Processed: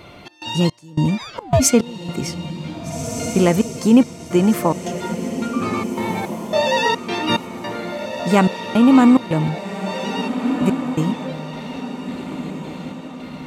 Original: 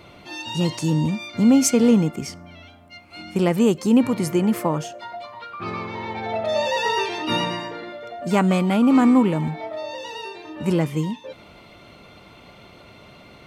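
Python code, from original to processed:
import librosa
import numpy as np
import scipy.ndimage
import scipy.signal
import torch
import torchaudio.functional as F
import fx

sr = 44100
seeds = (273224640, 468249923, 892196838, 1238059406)

y = fx.step_gate(x, sr, bpm=108, pattern='xx.xx..x', floor_db=-24.0, edge_ms=4.5)
y = fx.ring_mod(y, sr, carrier_hz=fx.line((1.17, 1600.0), (1.59, 350.0)), at=(1.17, 1.59), fade=0.02)
y = fx.echo_diffused(y, sr, ms=1643, feedback_pct=43, wet_db=-8.5)
y = y * librosa.db_to_amplitude(4.5)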